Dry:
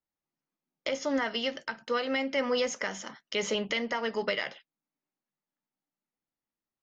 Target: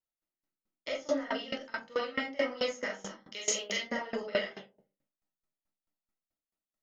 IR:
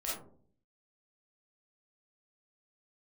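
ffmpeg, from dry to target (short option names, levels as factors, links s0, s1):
-filter_complex "[0:a]asettb=1/sr,asplit=3[s0][s1][s2];[s0]atrim=end=3.344[s3];[s1]atrim=start=3.34:end=3.83,asetpts=PTS-STARTPTS,afade=t=in:d=0.004:c=qsin,afade=t=out:st=0.486:d=0.004:c=qsin,aemphasis=mode=production:type=riaa[s4];[s2]atrim=start=3.826[s5];[s3][s4]acrossfade=d=0.004:c1=hsin:c2=qsin[s6];[s6][s5]acrossfade=d=0.004:c1=qsin:c2=hsin[s7];[1:a]atrim=start_sample=2205[s8];[s7][s8]afir=irnorm=-1:irlink=0,aeval=exprs='val(0)*pow(10,-21*if(lt(mod(4.6*n/s,1),2*abs(4.6)/1000),1-mod(4.6*n/s,1)/(2*abs(4.6)/1000),(mod(4.6*n/s,1)-2*abs(4.6)/1000)/(1-2*abs(4.6)/1000))/20)':c=same"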